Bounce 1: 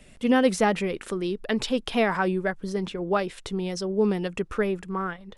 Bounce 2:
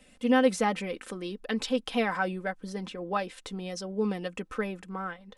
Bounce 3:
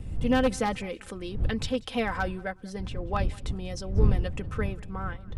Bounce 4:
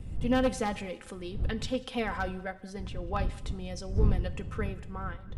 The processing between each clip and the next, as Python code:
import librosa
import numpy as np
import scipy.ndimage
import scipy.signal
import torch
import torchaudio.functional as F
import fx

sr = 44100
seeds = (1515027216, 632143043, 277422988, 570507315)

y1 = fx.low_shelf(x, sr, hz=120.0, db=-9.5)
y1 = y1 + 0.59 * np.pad(y1, (int(3.9 * sr / 1000.0), 0))[:len(y1)]
y1 = y1 * 10.0 ** (-5.0 / 20.0)
y2 = np.minimum(y1, 2.0 * 10.0 ** (-17.5 / 20.0) - y1)
y2 = fx.dmg_wind(y2, sr, seeds[0], corner_hz=80.0, level_db=-29.0)
y2 = fx.echo_feedback(y2, sr, ms=188, feedback_pct=28, wet_db=-23.5)
y2 = y2 * 10.0 ** (-1.0 / 20.0)
y3 = fx.rev_double_slope(y2, sr, seeds[1], early_s=0.77, late_s=2.1, knee_db=-18, drr_db=13.0)
y3 = y3 * 10.0 ** (-3.5 / 20.0)